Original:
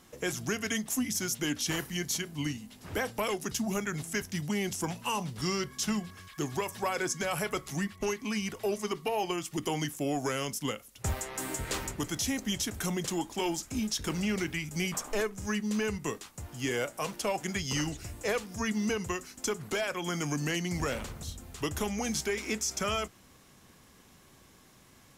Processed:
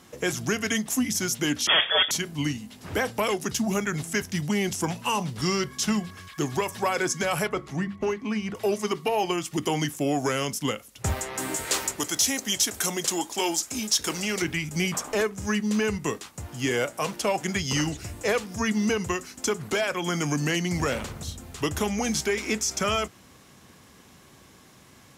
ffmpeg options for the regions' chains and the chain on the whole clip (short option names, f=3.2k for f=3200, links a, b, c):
-filter_complex "[0:a]asettb=1/sr,asplit=3[a][b][c];[a]atrim=end=1.674[d];[b]atrim=start=1.67:end=2.11,asetpts=PTS-STARTPTS,afade=t=in:d=0.004:c=qsin,afade=t=out:st=0.436:d=0.004:c=qsin,highpass=f=210:w=0.5412,highpass=f=210:w=1.3066,aeval=exprs='0.0891*sin(PI/2*3.16*val(0)/0.0891)':c=same,lowpass=f=3.1k:t=q:w=0.5098,lowpass=f=3.1k:t=q:w=0.6013,lowpass=f=3.1k:t=q:w=0.9,lowpass=f=3.1k:t=q:w=2.563,afreqshift=-3600[e];[c]atrim=start=2.106[f];[d][e]acrossfade=d=0.004:c1=hsin:c2=qsin[g];[g][f]acrossfade=d=0.004:c1=qsin:c2=hsin,asettb=1/sr,asplit=3[h][i][j];[h]atrim=end=7.474[k];[i]atrim=start=7.47:end=8.55,asetpts=PTS-STARTPTS,afade=t=in:d=0.004:c=qsin,afade=t=out:st=1.076:d=0.004:c=qsin,lowpass=f=1.5k:p=1,bandreject=f=50:t=h:w=6,bandreject=f=100:t=h:w=6,bandreject=f=150:t=h:w=6,bandreject=f=200:t=h:w=6,bandreject=f=250:t=h:w=6,bandreject=f=300:t=h:w=6,bandreject=f=350:t=h:w=6[l];[j]atrim=start=8.546[m];[k][l]acrossfade=d=0.004:c1=hsin:c2=qsin[n];[n][m]acrossfade=d=0.004:c1=qsin:c2=hsin,asettb=1/sr,asplit=3[o][p][q];[o]atrim=end=11.564[r];[p]atrim=start=11.56:end=14.42,asetpts=PTS-STARTPTS,afade=t=in:d=0.004:c=qsin,afade=t=out:st=2.856:d=0.004:c=qsin,bass=f=250:g=-12,treble=f=4k:g=7,volume=19.5dB,asoftclip=hard,volume=-19.5dB[s];[q]atrim=start=14.416[t];[r][s]acrossfade=d=0.004:c1=hsin:c2=qsin[u];[u][t]acrossfade=d=0.004:c1=qsin:c2=hsin,highpass=60,highshelf=f=11k:g=-5,volume=6dB"